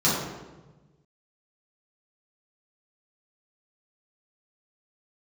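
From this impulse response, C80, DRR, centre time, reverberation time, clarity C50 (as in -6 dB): 3.0 dB, -9.5 dB, 76 ms, 1.2 s, 0.0 dB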